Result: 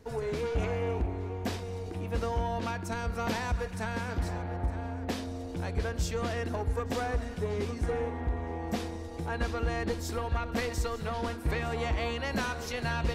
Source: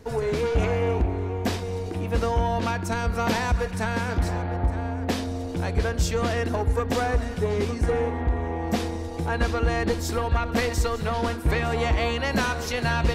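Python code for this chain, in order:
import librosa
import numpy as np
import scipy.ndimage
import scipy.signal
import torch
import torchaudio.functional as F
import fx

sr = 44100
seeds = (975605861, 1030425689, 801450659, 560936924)

y = x + 10.0 ** (-21.0 / 20.0) * np.pad(x, (int(867 * sr / 1000.0), 0))[:len(x)]
y = y * librosa.db_to_amplitude(-7.5)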